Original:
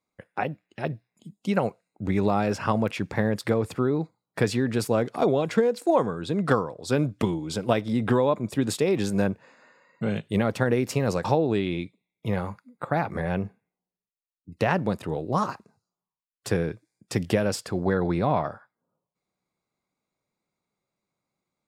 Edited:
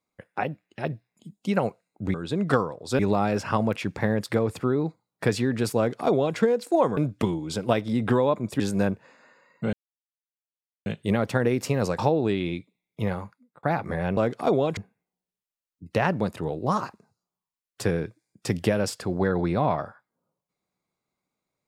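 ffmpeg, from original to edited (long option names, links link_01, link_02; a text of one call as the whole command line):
ffmpeg -i in.wav -filter_complex "[0:a]asplit=9[link_01][link_02][link_03][link_04][link_05][link_06][link_07][link_08][link_09];[link_01]atrim=end=2.142[link_10];[link_02]atrim=start=6.118:end=6.972[link_11];[link_03]atrim=start=2.138:end=6.122[link_12];[link_04]atrim=start=6.968:end=8.602[link_13];[link_05]atrim=start=8.988:end=10.12,asetpts=PTS-STARTPTS,afade=type=out:start_time=1.128:duration=0.004:curve=hsin,apad=pad_dur=1.13[link_14];[link_06]atrim=start=10.12:end=12.89,asetpts=PTS-STARTPTS,afade=type=in:duration=0.004:curve=hsin,afade=type=out:start_time=2.2:duration=0.57[link_15];[link_07]atrim=start=12.89:end=13.432,asetpts=PTS-STARTPTS,afade=type=in:duration=0.004:curve=hsin[link_16];[link_08]atrim=start=4.918:end=5.522[link_17];[link_09]atrim=start=13.428[link_18];[link_10][link_11]acrossfade=duration=0.004:curve1=hsin:curve2=hsin[link_19];[link_19][link_12]acrossfade=duration=0.004:curve1=hsin:curve2=hsin[link_20];[link_20][link_13]acrossfade=duration=0.004:curve1=hsin:curve2=hsin[link_21];[link_14][link_15][link_16]concat=n=3:v=0:a=1[link_22];[link_21][link_22]acrossfade=duration=0.004:curve1=hsin:curve2=hsin[link_23];[link_23][link_17]acrossfade=duration=0.004:curve1=hsin:curve2=hsin[link_24];[link_24][link_18]acrossfade=duration=0.004:curve1=hsin:curve2=hsin" out.wav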